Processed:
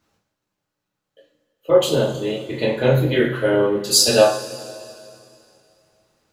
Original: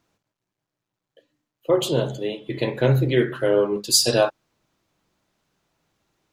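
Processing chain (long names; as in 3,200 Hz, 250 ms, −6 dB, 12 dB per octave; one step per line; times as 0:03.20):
coupled-rooms reverb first 0.33 s, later 2.7 s, from −19 dB, DRR −4.5 dB
level −1.5 dB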